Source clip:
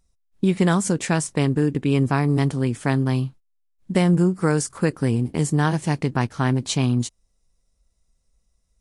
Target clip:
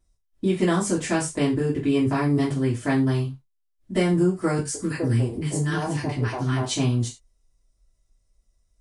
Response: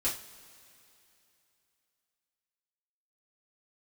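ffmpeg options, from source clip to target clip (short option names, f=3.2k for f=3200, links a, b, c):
-filter_complex "[0:a]asettb=1/sr,asplit=3[a][b][c];[a]atrim=end=4.584[d];[b]atrim=start=4.58:end=6.65,asetpts=PTS-STARTPTS,afade=t=in:d=0.004:c=qsin,afade=t=out:st=2.066:d=0.004:c=qsin,acrossover=split=350|1100[e][f][g];[g]adelay=70[h];[f]adelay=160[i];[e][i][h]amix=inputs=3:normalize=0,atrim=end_sample=91287[j];[c]atrim=start=6.646[k];[d][j]acrossfade=d=0.004:c1=hsin:c2=qsin[l];[l][k]acrossfade=d=0.004:c1=qsin:c2=hsin[m];[1:a]atrim=start_sample=2205,atrim=end_sample=6174,asetrate=52920,aresample=44100[n];[m][n]afir=irnorm=-1:irlink=0,volume=-5.5dB"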